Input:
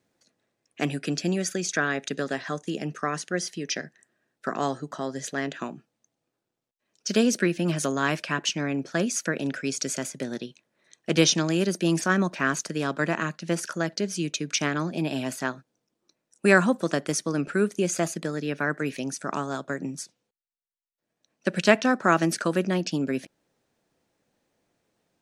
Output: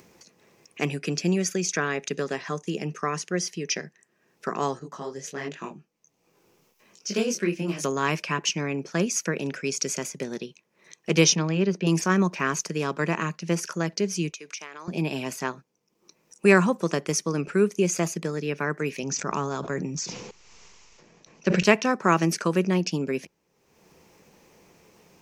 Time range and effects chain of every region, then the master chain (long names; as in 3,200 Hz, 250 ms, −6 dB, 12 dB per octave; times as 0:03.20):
0:04.79–0:07.84: hard clipping −11 dBFS + micro pitch shift up and down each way 45 cents
0:11.35–0:11.87: high-frequency loss of the air 200 metres + notch filter 340 Hz, Q 9.7
0:14.30–0:14.88: high-pass filter 580 Hz + downward compressor 4 to 1, threshold −37 dBFS
0:19.03–0:21.63: Butterworth low-pass 7,500 Hz 96 dB per octave + low-shelf EQ 78 Hz +10 dB + level that may fall only so fast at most 34 dB per second
whole clip: EQ curve with evenly spaced ripples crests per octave 0.79, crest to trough 7 dB; upward compression, threshold −41 dBFS